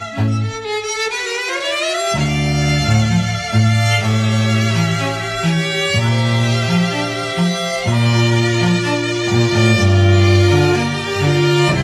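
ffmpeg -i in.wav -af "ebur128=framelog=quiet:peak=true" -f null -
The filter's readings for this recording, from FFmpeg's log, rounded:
Integrated loudness:
  I:         -15.4 LUFS
  Threshold: -25.4 LUFS
Loudness range:
  LRA:         3.0 LU
  Threshold: -35.4 LUFS
  LRA low:   -16.6 LUFS
  LRA high:  -13.7 LUFS
True peak:
  Peak:       -1.4 dBFS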